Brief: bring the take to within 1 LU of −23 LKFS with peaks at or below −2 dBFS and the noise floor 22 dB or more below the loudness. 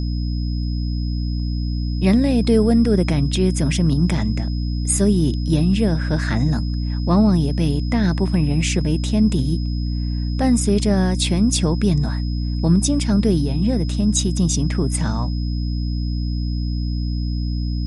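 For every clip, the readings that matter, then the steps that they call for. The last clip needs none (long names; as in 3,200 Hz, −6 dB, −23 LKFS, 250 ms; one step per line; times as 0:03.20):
mains hum 60 Hz; hum harmonics up to 300 Hz; level of the hum −20 dBFS; interfering tone 5,100 Hz; level of the tone −38 dBFS; integrated loudness −20.0 LKFS; sample peak −5.0 dBFS; target loudness −23.0 LKFS
→ hum removal 60 Hz, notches 5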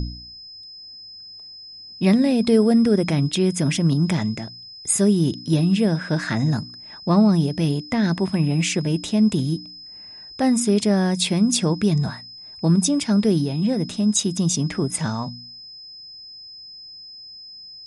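mains hum none found; interfering tone 5,100 Hz; level of the tone −38 dBFS
→ notch filter 5,100 Hz, Q 30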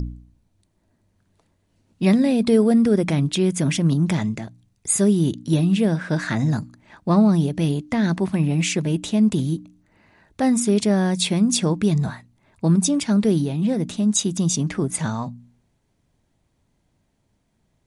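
interfering tone none found; integrated loudness −20.5 LKFS; sample peak −6.0 dBFS; target loudness −23.0 LKFS
→ level −2.5 dB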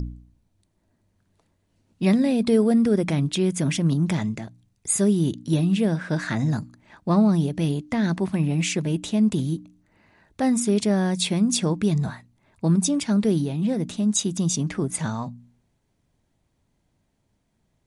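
integrated loudness −23.0 LKFS; sample peak −8.5 dBFS; background noise floor −71 dBFS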